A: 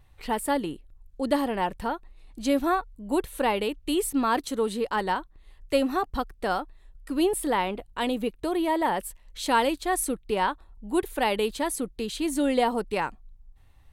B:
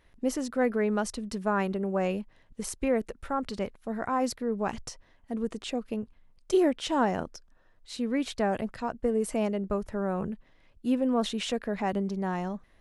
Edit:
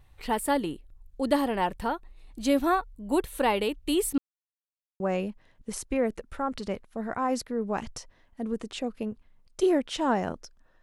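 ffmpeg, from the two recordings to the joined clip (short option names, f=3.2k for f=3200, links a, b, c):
-filter_complex "[0:a]apad=whole_dur=10.82,atrim=end=10.82,asplit=2[a][b];[a]atrim=end=4.18,asetpts=PTS-STARTPTS,afade=t=out:st=4.176:d=0.004:c=hsin[c];[b]atrim=start=4.18:end=5,asetpts=PTS-STARTPTS,volume=0[d];[1:a]atrim=start=1.91:end=7.73,asetpts=PTS-STARTPTS,afade=t=in:d=0.004:c=hsin[e];[c][d][e]concat=n=3:v=0:a=1"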